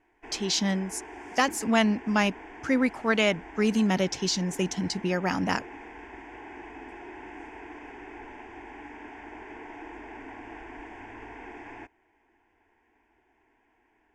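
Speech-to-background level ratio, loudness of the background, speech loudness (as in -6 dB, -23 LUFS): 17.0 dB, -43.5 LUFS, -26.5 LUFS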